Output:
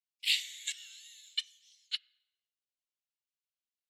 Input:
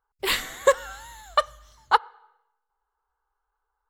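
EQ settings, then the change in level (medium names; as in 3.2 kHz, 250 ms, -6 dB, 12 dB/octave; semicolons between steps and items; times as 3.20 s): steep high-pass 2.4 kHz 48 dB/octave; distance through air 60 m; 0.0 dB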